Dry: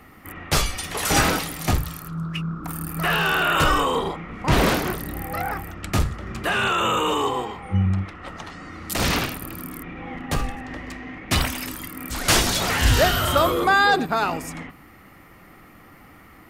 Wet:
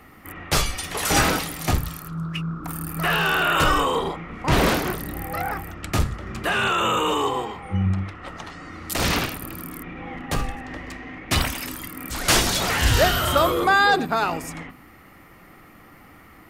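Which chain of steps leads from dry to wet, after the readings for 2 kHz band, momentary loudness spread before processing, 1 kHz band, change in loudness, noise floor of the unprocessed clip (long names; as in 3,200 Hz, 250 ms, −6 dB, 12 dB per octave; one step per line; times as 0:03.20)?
0.0 dB, 16 LU, 0.0 dB, 0.0 dB, −48 dBFS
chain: mains-hum notches 50/100/150/200/250 Hz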